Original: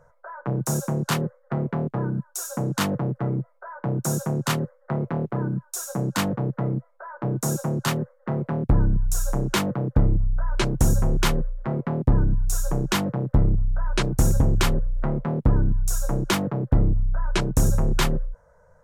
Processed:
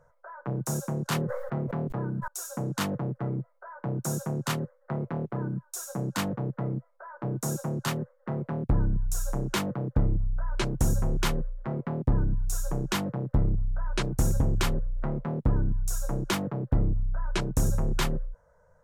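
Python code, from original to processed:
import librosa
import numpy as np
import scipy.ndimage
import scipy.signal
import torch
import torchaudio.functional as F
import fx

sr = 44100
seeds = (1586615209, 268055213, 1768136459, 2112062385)

y = fx.sustainer(x, sr, db_per_s=26.0, at=(1.04, 2.28))
y = y * librosa.db_to_amplitude(-5.5)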